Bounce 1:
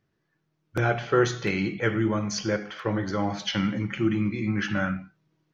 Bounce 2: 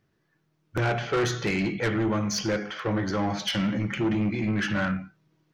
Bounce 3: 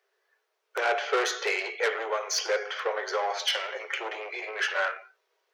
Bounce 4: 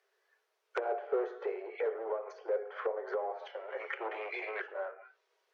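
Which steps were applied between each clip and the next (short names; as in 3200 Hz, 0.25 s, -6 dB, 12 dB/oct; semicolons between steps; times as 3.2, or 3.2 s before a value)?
soft clip -24 dBFS, distortion -10 dB; gain +3.5 dB
Chebyshev high-pass 390 Hz, order 8; gain +2.5 dB
treble ducked by the level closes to 550 Hz, closed at -27 dBFS; gain -2 dB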